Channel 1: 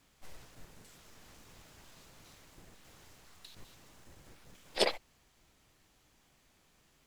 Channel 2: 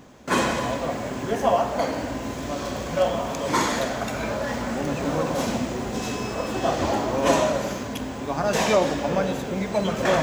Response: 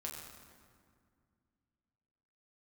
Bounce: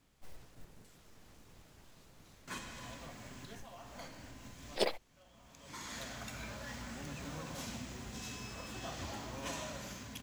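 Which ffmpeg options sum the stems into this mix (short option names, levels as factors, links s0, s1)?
-filter_complex "[0:a]tiltshelf=f=640:g=3,volume=0.708,asplit=2[s0][s1];[1:a]equalizer=f=490:t=o:w=2.6:g=-14,acompressor=threshold=0.0355:ratio=2.5,adelay=2200,volume=0.316[s2];[s1]apad=whole_len=548011[s3];[s2][s3]sidechaincompress=threshold=0.00126:ratio=10:attack=22:release=566[s4];[s0][s4]amix=inputs=2:normalize=0,acrusher=bits=6:mode=log:mix=0:aa=0.000001"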